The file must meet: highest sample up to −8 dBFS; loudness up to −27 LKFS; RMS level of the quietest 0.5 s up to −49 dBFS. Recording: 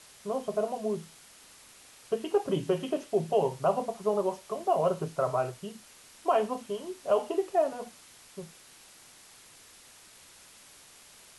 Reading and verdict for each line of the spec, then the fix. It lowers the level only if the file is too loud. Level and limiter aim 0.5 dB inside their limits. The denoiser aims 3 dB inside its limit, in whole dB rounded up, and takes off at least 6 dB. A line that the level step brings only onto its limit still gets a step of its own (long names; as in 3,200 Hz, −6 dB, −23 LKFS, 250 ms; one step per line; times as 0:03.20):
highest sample −14.5 dBFS: in spec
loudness −30.0 LKFS: in spec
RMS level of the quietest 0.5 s −54 dBFS: in spec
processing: no processing needed